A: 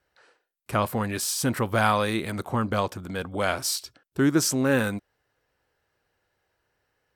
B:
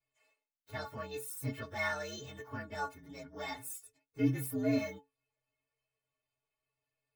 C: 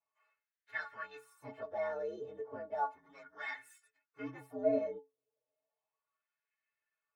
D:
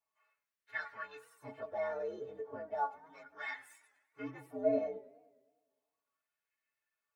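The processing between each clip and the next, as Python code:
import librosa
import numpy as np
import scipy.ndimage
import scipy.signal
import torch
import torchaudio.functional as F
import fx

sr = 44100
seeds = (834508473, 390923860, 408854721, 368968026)

y1 = fx.partial_stretch(x, sr, pct=120)
y1 = fx.stiff_resonator(y1, sr, f0_hz=130.0, decay_s=0.29, stiffness=0.03)
y2 = fx.filter_lfo_bandpass(y1, sr, shape='sine', hz=0.34, low_hz=440.0, high_hz=1800.0, q=3.6)
y2 = y2 * librosa.db_to_amplitude(8.5)
y3 = fx.echo_warbled(y2, sr, ms=102, feedback_pct=61, rate_hz=2.8, cents=163, wet_db=-21.5)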